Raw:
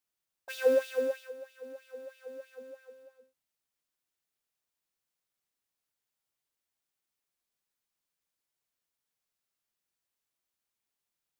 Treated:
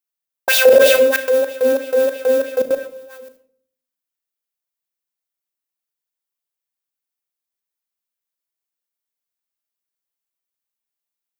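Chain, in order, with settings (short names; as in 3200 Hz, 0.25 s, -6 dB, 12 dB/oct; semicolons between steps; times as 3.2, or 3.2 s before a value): HPF 230 Hz 6 dB/oct; gate with hold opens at -59 dBFS; high shelf 12000 Hz +9.5 dB; level quantiser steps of 24 dB; reverb RT60 0.55 s, pre-delay 37 ms, DRR 9 dB; maximiser +35 dB; gain -1 dB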